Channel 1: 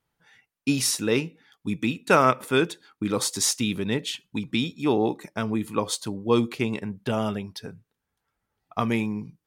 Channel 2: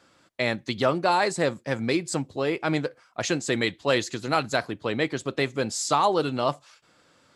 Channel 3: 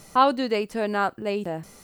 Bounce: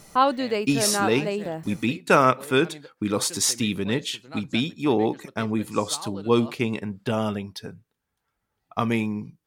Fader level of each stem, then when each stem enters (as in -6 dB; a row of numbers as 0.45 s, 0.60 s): +1.0 dB, -17.0 dB, -1.0 dB; 0.00 s, 0.00 s, 0.00 s